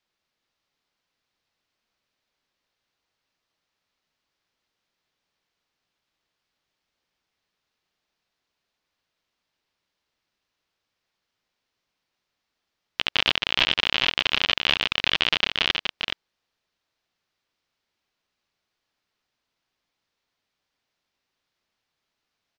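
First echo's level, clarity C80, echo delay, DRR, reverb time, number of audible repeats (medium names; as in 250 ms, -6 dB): -6.0 dB, no reverb, 423 ms, no reverb, no reverb, 1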